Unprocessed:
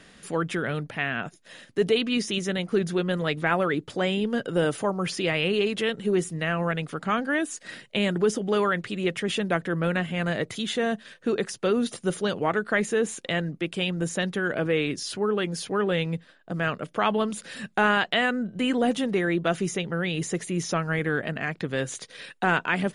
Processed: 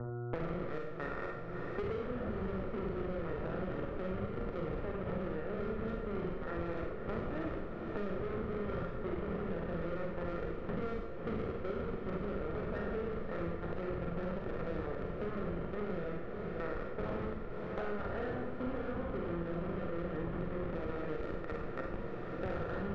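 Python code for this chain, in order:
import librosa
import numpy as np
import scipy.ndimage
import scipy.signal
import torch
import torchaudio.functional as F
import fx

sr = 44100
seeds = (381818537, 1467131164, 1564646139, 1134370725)

p1 = fx.spec_trails(x, sr, decay_s=1.03)
p2 = fx.dynamic_eq(p1, sr, hz=990.0, q=1.3, threshold_db=-37.0, ratio=4.0, max_db=-4)
p3 = fx.schmitt(p2, sr, flips_db=-20.0)
p4 = fx.rider(p3, sr, range_db=5, speed_s=0.5)
p5 = fx.dmg_buzz(p4, sr, base_hz=120.0, harmonics=12, level_db=-50.0, tilt_db=-8, odd_only=False)
p6 = scipy.signal.sosfilt(scipy.signal.cheby1(6, 9, 1900.0, 'lowpass', fs=sr, output='sos'), p5)
p7 = 10.0 ** (-30.5 / 20.0) * np.tanh(p6 / 10.0 ** (-30.5 / 20.0))
p8 = p7 + fx.echo_diffused(p7, sr, ms=563, feedback_pct=73, wet_db=-13, dry=0)
p9 = fx.rev_schroeder(p8, sr, rt60_s=0.6, comb_ms=32, drr_db=-0.5)
p10 = fx.band_squash(p9, sr, depth_pct=100)
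y = F.gain(torch.from_numpy(p10), -6.0).numpy()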